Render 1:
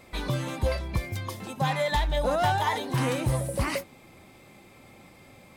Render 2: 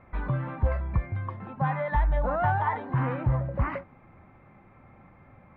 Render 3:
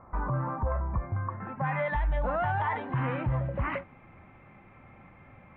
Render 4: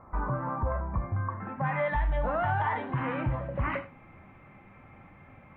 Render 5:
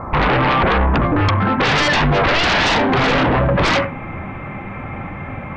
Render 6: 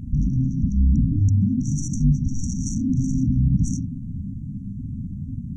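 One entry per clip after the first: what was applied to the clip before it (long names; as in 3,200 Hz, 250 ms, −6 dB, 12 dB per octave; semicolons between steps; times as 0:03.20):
low-pass filter 1,600 Hz 24 dB per octave; parametric band 400 Hz −10 dB 2 octaves; level +4 dB
low-pass filter sweep 1,100 Hz → 3,000 Hz, 0:01.14–0:01.85; brickwall limiter −21 dBFS, peak gain reduction 7 dB
reverb whose tail is shaped and stops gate 110 ms flat, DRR 8.5 dB
sine wavefolder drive 15 dB, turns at −17 dBFS; high-frequency loss of the air 77 metres; level +5.5 dB
linear-phase brick-wall band-stop 280–5,600 Hz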